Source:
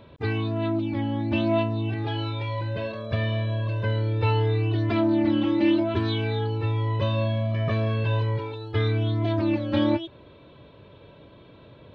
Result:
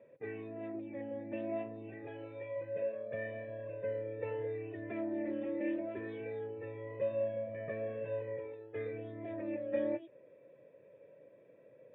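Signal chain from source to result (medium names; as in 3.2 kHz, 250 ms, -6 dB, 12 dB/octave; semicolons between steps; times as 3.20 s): high-pass 130 Hz 24 dB/octave; flange 1.1 Hz, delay 1.3 ms, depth 7.9 ms, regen -85%; cascade formant filter e; trim +4.5 dB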